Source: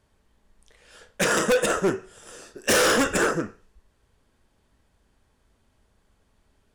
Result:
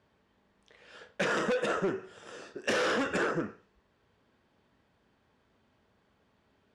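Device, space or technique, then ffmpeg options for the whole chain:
AM radio: -af "highpass=120,lowpass=3900,acompressor=threshold=-25dB:ratio=10,asoftclip=type=tanh:threshold=-20.5dB"

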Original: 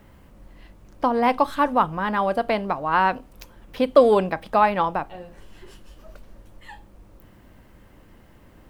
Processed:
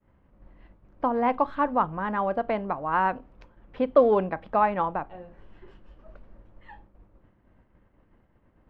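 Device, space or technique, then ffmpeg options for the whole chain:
hearing-loss simulation: -af "lowpass=1900,agate=range=-33dB:threshold=-43dB:ratio=3:detection=peak,volume=-4dB"

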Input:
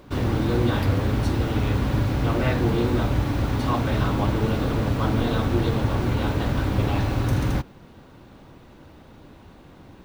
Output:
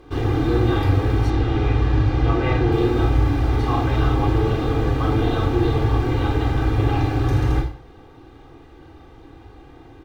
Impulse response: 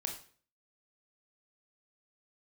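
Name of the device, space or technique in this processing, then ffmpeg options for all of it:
microphone above a desk: -filter_complex "[0:a]aemphasis=mode=reproduction:type=cd,aecho=1:1:2.5:0.78[link_01];[1:a]atrim=start_sample=2205[link_02];[link_01][link_02]afir=irnorm=-1:irlink=0,asettb=1/sr,asplit=3[link_03][link_04][link_05];[link_03]atrim=end=1.304[link_06];[link_04]atrim=start=1.3:end=2.72,asetpts=PTS-STARTPTS,afade=type=in:duration=0.004:curve=qsin,afade=type=out:start_time=1.416:duration=0.004:curve=qsin,lowpass=6100[link_07];[link_05]atrim=start=2.716[link_08];[link_06][link_07]acrossfade=duration=0.004:curve1=hsin:curve2=qsin[link_09];[link_09][link_08]acrossfade=duration=0.004:curve1=qsin:curve2=hsin"

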